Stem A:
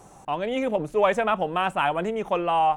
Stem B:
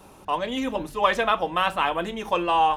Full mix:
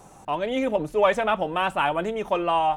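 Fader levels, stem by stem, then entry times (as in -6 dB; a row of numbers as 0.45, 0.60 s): 0.0, -9.5 dB; 0.00, 0.00 s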